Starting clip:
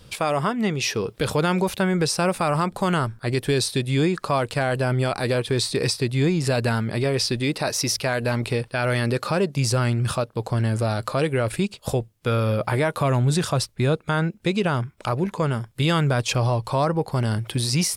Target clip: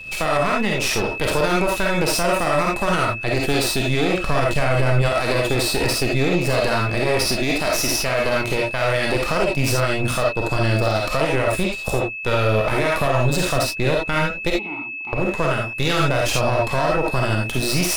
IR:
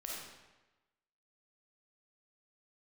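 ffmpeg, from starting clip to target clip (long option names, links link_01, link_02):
-filter_complex "[0:a]asettb=1/sr,asplit=3[link_01][link_02][link_03];[link_01]atrim=end=10.514[link_04];[link_02]atrim=start=10.51:end=11.11,asetpts=PTS-STARTPTS,afade=type=in:duration=0.004:curve=qsin,afade=type=out:start_time=0.596:duration=0.004:curve=qsin,equalizer=frequency=4800:width=1.5:gain=7.5[link_05];[link_03]atrim=start=11.106[link_06];[link_04][link_05]acrossfade=duration=0.004:curve1=hsin:curve2=qsin[link_07];[link_07][link_06]acrossfade=duration=0.004:curve1=qsin:curve2=hsin,aeval=exprs='max(val(0),0)':channel_layout=same,asettb=1/sr,asplit=3[link_08][link_09][link_10];[link_08]atrim=end=4.184[link_11];[link_09]atrim=start=4.18:end=5.02,asetpts=PTS-STARTPTS,afade=type=in:duration=0.004:curve=qsin,afade=type=out:start_time=0.836:duration=0.004:curve=qsin,lowshelf=frequency=170:gain=9.5[link_12];[link_10]atrim=start=5.016[link_13];[link_11][link_12]acrossfade=duration=0.004:curve1=hsin:curve2=qsin[link_14];[link_14][link_13]acrossfade=duration=0.004:curve1=qsin:curve2=hsin,asettb=1/sr,asplit=3[link_15][link_16][link_17];[link_15]atrim=end=14.504[link_18];[link_16]atrim=start=14.5:end=15.13,asetpts=PTS-STARTPTS,afade=type=in:duration=0.004:curve=qsin,afade=type=out:start_time=0.626:duration=0.004:curve=qsin,asplit=3[link_19][link_20][link_21];[link_19]bandpass=frequency=300:width_type=q:width=8,volume=0dB[link_22];[link_20]bandpass=frequency=870:width_type=q:width=8,volume=-6dB[link_23];[link_21]bandpass=frequency=2240:width_type=q:width=8,volume=-9dB[link_24];[link_22][link_23][link_24]amix=inputs=3:normalize=0[link_25];[link_17]atrim=start=15.126[link_26];[link_18][link_25]acrossfade=duration=0.004:curve1=hsin:curve2=qsin[link_27];[link_27][link_26]acrossfade=duration=0.004:curve1=qsin:curve2=hsin,aeval=exprs='val(0)+0.0112*sin(2*PI*2600*n/s)':channel_layout=same[link_28];[1:a]atrim=start_sample=2205,atrim=end_sample=3969[link_29];[link_28][link_29]afir=irnorm=-1:irlink=0,alimiter=level_in=18.5dB:limit=-1dB:release=50:level=0:latency=1,volume=-7.5dB"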